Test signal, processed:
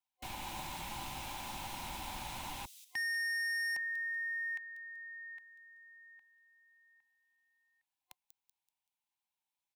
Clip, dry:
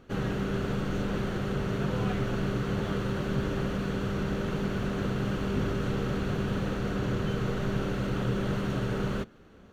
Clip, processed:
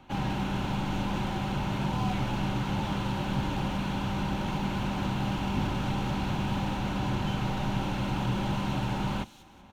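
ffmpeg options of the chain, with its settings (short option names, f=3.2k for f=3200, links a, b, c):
-filter_complex "[0:a]superequalizer=7b=0.316:9b=3.98:12b=2:13b=1.78,acrossover=split=110|590|4100[a][b][c][d];[c]asoftclip=type=hard:threshold=-35.5dB[e];[d]asplit=5[f][g][h][i][j];[g]adelay=191,afreqshift=-110,volume=-4dB[k];[h]adelay=382,afreqshift=-220,volume=-13.4dB[l];[i]adelay=573,afreqshift=-330,volume=-22.7dB[m];[j]adelay=764,afreqshift=-440,volume=-32.1dB[n];[f][k][l][m][n]amix=inputs=5:normalize=0[o];[a][b][e][o]amix=inputs=4:normalize=0"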